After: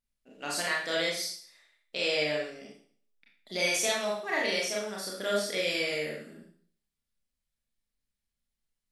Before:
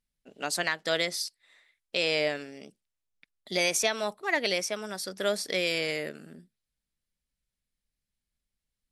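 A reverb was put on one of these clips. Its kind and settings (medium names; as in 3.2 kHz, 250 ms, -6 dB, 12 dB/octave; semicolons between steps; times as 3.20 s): Schroeder reverb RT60 0.52 s, combs from 27 ms, DRR -4 dB; trim -6.5 dB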